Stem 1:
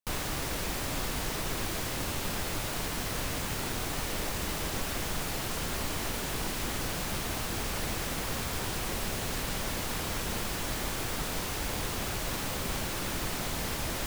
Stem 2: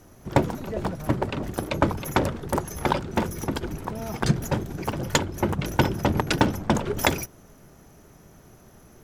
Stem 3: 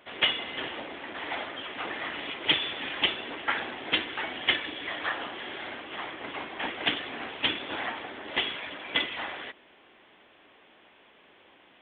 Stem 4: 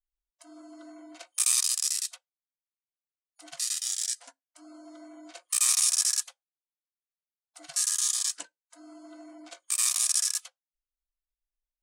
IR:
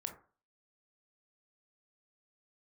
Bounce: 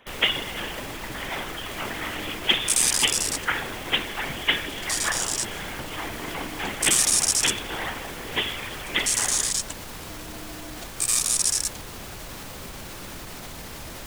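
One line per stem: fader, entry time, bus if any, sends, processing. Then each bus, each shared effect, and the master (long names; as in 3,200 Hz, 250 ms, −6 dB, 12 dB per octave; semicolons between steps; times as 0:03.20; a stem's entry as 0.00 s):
−0.5 dB, 0.00 s, no send, brickwall limiter −28 dBFS, peak gain reduction 8 dB
−19.5 dB, 0.00 s, no send, no processing
+2.5 dB, 0.00 s, no send, notch filter 670 Hz, Q 12; random phases in short frames
+3.0 dB, 1.30 s, no send, no processing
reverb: not used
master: no processing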